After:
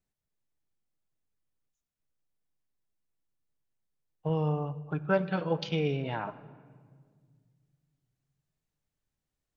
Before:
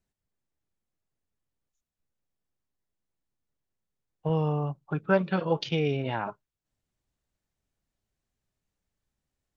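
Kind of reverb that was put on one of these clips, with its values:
rectangular room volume 2,700 cubic metres, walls mixed, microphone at 0.45 metres
level −3.5 dB

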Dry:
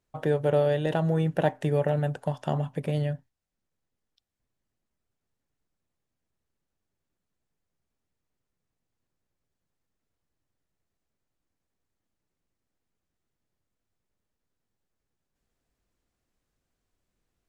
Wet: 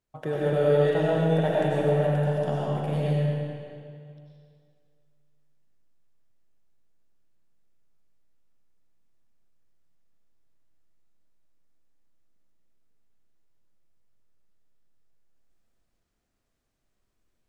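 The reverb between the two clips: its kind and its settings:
comb and all-pass reverb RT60 2.3 s, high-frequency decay 0.9×, pre-delay 60 ms, DRR −6.5 dB
level −5 dB

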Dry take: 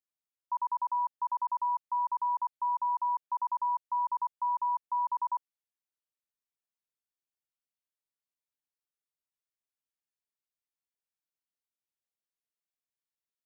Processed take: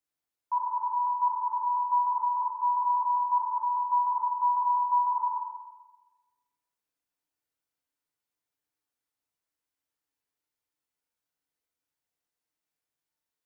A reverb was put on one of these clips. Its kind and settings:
feedback delay network reverb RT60 1.2 s, low-frequency decay 0.75×, high-frequency decay 0.25×, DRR −2 dB
level +2.5 dB

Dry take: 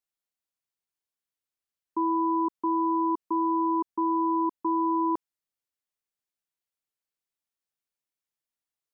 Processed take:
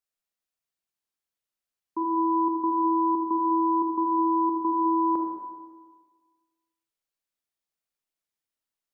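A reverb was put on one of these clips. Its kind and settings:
comb and all-pass reverb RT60 1.5 s, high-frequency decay 0.85×, pre-delay 0 ms, DRR 0.5 dB
level −1.5 dB

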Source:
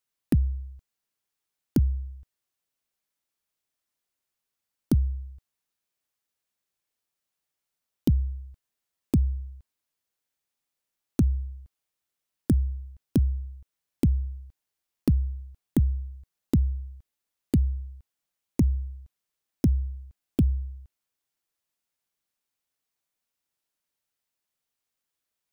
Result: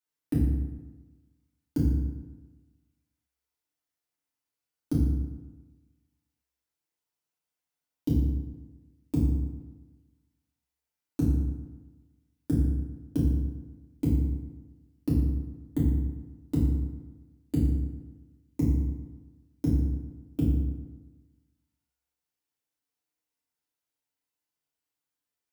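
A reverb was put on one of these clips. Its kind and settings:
feedback delay network reverb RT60 1.2 s, low-frequency decay 1.05×, high-frequency decay 0.6×, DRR −7.5 dB
level −11.5 dB

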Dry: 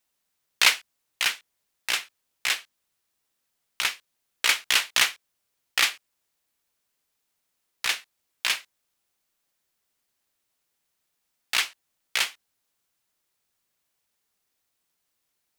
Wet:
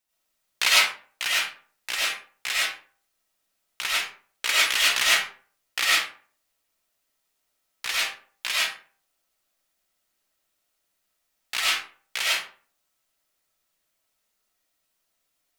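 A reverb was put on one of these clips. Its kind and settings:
comb and all-pass reverb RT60 0.45 s, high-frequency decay 0.6×, pre-delay 60 ms, DRR −7 dB
level −5 dB

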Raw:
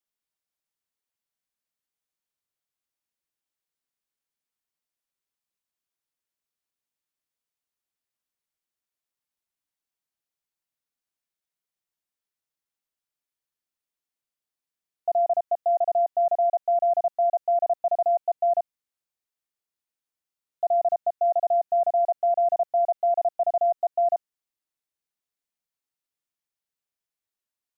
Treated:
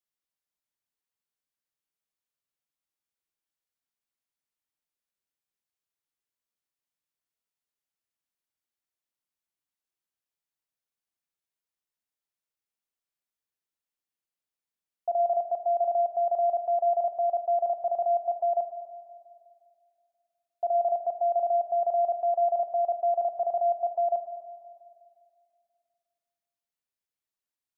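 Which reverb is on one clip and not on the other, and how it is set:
spring reverb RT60 2.2 s, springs 40/49 ms, chirp 50 ms, DRR 7.5 dB
level −4 dB

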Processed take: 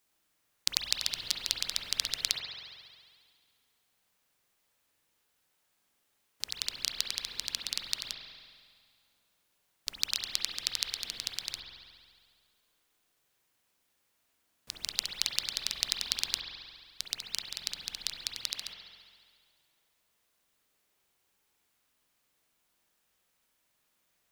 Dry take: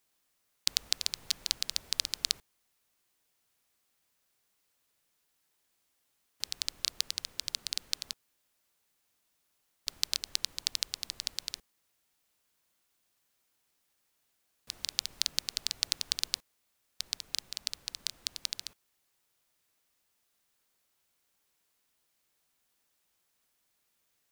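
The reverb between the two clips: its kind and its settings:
spring reverb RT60 1.9 s, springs 45 ms, chirp 25 ms, DRR 0 dB

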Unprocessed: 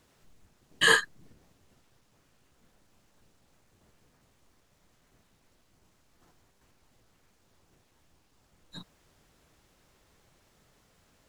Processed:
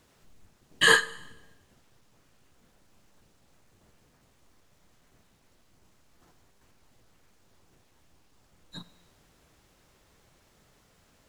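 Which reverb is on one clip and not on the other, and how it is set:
four-comb reverb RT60 1 s, combs from 31 ms, DRR 17 dB
level +2 dB

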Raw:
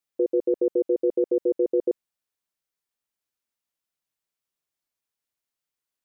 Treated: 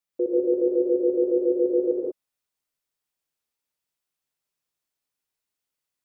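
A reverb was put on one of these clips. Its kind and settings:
reverb whose tail is shaped and stops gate 210 ms rising, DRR −2.5 dB
level −2.5 dB

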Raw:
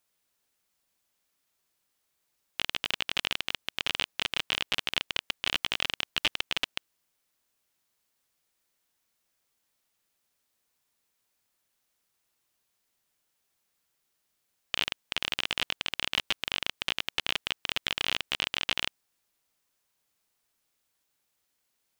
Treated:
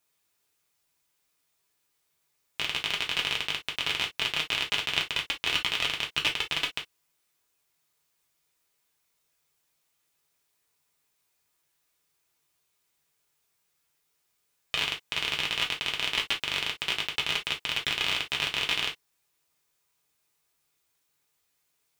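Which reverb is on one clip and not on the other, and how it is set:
reverb whose tail is shaped and stops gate 80 ms falling, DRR −1 dB
level −1 dB

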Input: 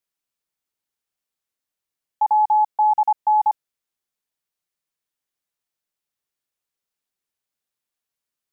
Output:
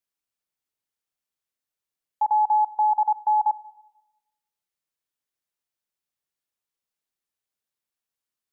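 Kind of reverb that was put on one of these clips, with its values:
spring reverb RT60 1 s, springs 33/37/49 ms, chirp 55 ms, DRR 17 dB
level −3.5 dB

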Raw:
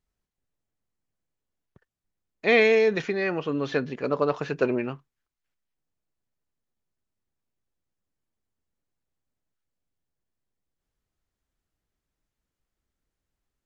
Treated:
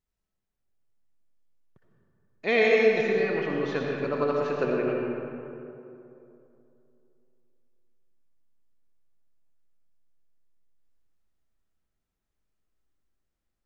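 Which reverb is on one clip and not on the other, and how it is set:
comb and all-pass reverb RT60 2.9 s, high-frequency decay 0.45×, pre-delay 40 ms, DRR −1.5 dB
level −5 dB

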